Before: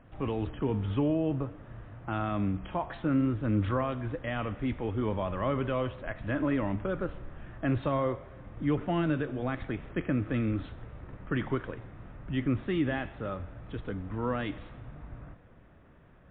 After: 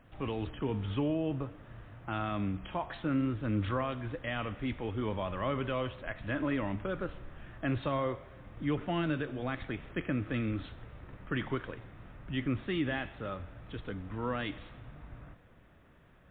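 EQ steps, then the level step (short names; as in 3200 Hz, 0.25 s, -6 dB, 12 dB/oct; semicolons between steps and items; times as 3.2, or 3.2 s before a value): high shelf 2400 Hz +10.5 dB; -4.0 dB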